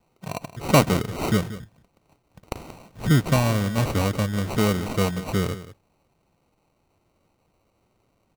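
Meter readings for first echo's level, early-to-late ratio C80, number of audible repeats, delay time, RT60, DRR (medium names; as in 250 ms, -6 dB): -15.0 dB, no reverb, 1, 181 ms, no reverb, no reverb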